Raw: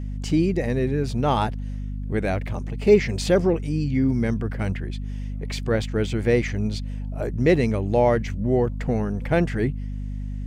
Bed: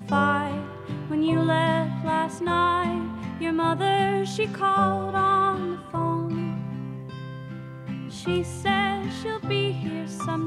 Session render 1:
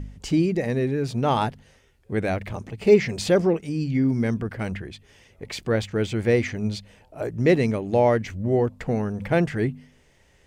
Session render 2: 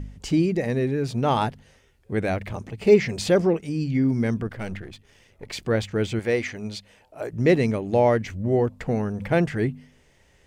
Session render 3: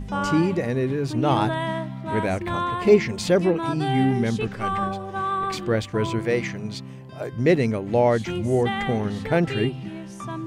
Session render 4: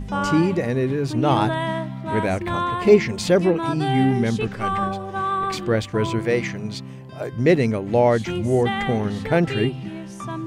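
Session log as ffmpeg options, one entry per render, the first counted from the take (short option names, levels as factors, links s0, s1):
-af "bandreject=f=50:t=h:w=4,bandreject=f=100:t=h:w=4,bandreject=f=150:t=h:w=4,bandreject=f=200:t=h:w=4,bandreject=f=250:t=h:w=4"
-filter_complex "[0:a]asettb=1/sr,asplit=3[s0][s1][s2];[s0]atrim=end=4.474[s3];[s1]atrim=start=4.47:end=5.53,asetpts=PTS-STARTPTS,afade=t=in:d=0.004:c=qsin,afade=t=out:st=1.056:d=0.004:c=qsin,aeval=exprs='if(lt(val(0),0),0.447*val(0),val(0))':c=same[s4];[s2]atrim=start=5.526[s5];[s3][s4]acrossfade=d=0.004:c1=hsin:c2=qsin[s6];[s6][s5]acrossfade=d=0.004:c1=qsin:c2=hsin,asettb=1/sr,asplit=3[s7][s8][s9];[s7]atrim=end=6.194[s10];[s8]atrim=start=6.19:end=7.33,asetpts=PTS-STARTPTS,afade=t=in:d=0.004:c=qsin,afade=t=out:st=1.136:d=0.004:c=qsin,lowshelf=f=270:g=-10.5[s11];[s9]atrim=start=7.326[s12];[s10][s11]acrossfade=d=0.004:c1=hsin:c2=qsin[s13];[s13][s12]acrossfade=d=0.004:c1=qsin:c2=hsin"
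-filter_complex "[1:a]volume=0.596[s0];[0:a][s0]amix=inputs=2:normalize=0"
-af "volume=1.26"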